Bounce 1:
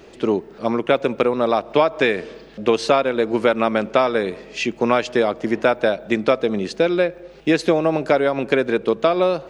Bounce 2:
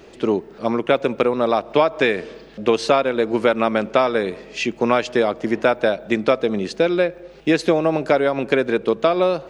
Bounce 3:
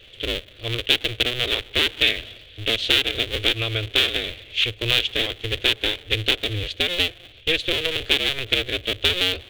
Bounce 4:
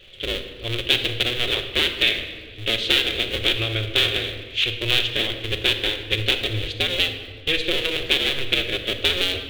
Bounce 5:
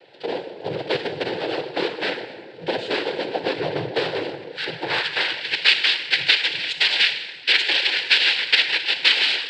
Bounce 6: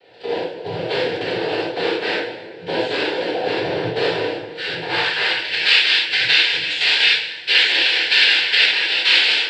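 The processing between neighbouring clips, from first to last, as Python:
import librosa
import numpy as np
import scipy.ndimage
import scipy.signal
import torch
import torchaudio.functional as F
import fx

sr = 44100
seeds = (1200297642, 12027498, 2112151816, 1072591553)

y1 = x
y2 = fx.cycle_switch(y1, sr, every=2, mode='inverted')
y2 = fx.curve_eq(y2, sr, hz=(110.0, 170.0, 460.0, 910.0, 3400.0, 5000.0), db=(0, -23, -10, -26, 9, -13))
y2 = y2 * librosa.db_to_amplitude(2.5)
y3 = fx.room_shoebox(y2, sr, seeds[0], volume_m3=1700.0, walls='mixed', distance_m=1.0)
y3 = y3 * librosa.db_to_amplitude(-1.0)
y4 = fx.noise_vocoder(y3, sr, seeds[1], bands=8)
y4 = fx.filter_sweep_bandpass(y4, sr, from_hz=540.0, to_hz=2400.0, start_s=4.57, end_s=5.53, q=1.2)
y4 = y4 * librosa.db_to_amplitude(7.5)
y5 = fx.rev_gated(y4, sr, seeds[2], gate_ms=130, shape='flat', drr_db=-7.5)
y5 = y5 * librosa.db_to_amplitude(-4.5)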